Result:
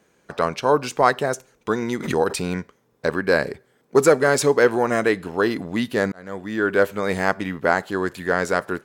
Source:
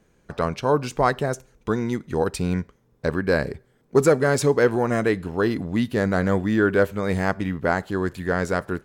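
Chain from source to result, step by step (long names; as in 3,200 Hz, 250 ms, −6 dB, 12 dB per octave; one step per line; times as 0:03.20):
high-pass filter 390 Hz 6 dB per octave
0:01.82–0:02.53: background raised ahead of every attack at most 70 dB per second
0:06.12–0:06.90: fade in linear
level +4.5 dB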